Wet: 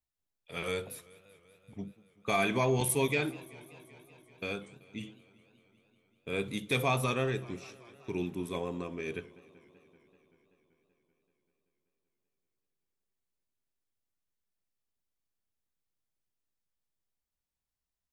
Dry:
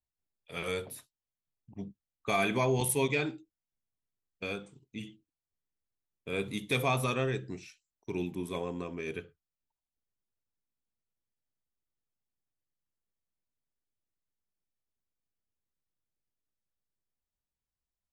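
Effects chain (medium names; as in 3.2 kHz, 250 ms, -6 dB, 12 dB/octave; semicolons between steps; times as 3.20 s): modulated delay 192 ms, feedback 76%, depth 171 cents, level -22 dB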